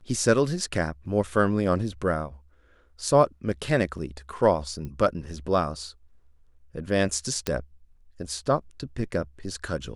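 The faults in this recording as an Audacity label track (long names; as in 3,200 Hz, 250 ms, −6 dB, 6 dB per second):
4.850000	4.850000	click −25 dBFS
7.470000	7.470000	click −10 dBFS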